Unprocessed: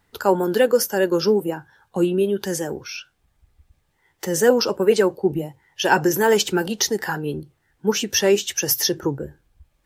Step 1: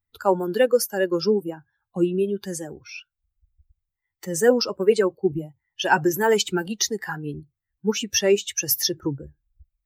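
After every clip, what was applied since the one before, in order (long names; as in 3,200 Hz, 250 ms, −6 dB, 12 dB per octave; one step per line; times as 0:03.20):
spectral dynamics exaggerated over time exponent 1.5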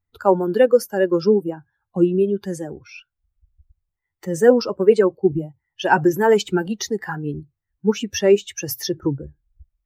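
high-shelf EQ 2,200 Hz −12 dB
level +5 dB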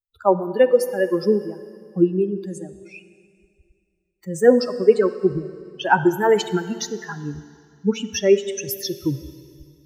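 spectral dynamics exaggerated over time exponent 1.5
dense smooth reverb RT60 2.3 s, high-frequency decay 0.95×, DRR 12 dB
level +1 dB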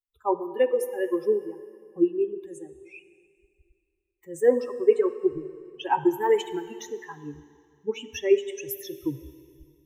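flanger 1.7 Hz, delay 3.2 ms, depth 3.5 ms, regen −70%
phaser with its sweep stopped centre 960 Hz, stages 8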